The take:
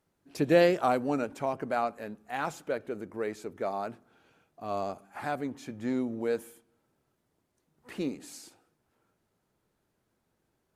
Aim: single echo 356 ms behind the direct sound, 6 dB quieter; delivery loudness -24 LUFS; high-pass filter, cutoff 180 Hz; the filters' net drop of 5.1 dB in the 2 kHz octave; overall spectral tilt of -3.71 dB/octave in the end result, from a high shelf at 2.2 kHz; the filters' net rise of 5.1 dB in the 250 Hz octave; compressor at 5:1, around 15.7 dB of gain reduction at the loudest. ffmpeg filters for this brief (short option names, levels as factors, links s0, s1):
-af "highpass=180,equalizer=f=250:t=o:g=7.5,equalizer=f=2000:t=o:g=-4.5,highshelf=f=2200:g=-4.5,acompressor=threshold=0.02:ratio=5,aecho=1:1:356:0.501,volume=5.62"